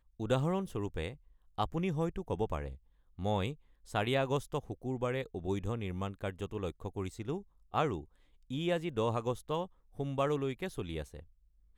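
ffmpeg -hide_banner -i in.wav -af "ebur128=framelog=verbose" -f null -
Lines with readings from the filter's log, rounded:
Integrated loudness:
  I:         -36.1 LUFS
  Threshold: -46.4 LUFS
Loudness range:
  LRA:         2.6 LU
  Threshold: -56.5 LUFS
  LRA low:   -38.1 LUFS
  LRA high:  -35.6 LUFS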